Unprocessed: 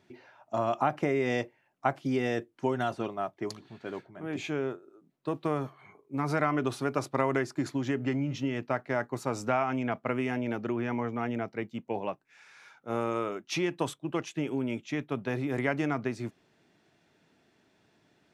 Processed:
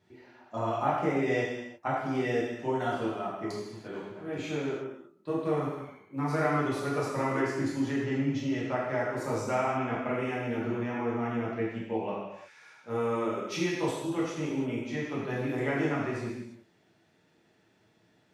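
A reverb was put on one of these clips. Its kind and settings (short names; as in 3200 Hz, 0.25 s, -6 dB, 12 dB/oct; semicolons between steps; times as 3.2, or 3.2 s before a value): non-linear reverb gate 0.38 s falling, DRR -7.5 dB; gain -8 dB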